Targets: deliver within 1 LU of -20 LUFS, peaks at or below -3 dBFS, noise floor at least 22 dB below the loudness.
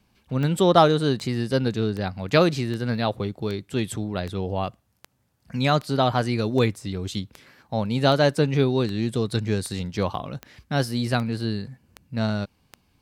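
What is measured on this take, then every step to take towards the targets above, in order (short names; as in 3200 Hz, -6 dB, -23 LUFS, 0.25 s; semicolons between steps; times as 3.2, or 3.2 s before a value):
clicks 17; loudness -24.0 LUFS; peak -2.5 dBFS; loudness target -20.0 LUFS
-> de-click; gain +4 dB; limiter -3 dBFS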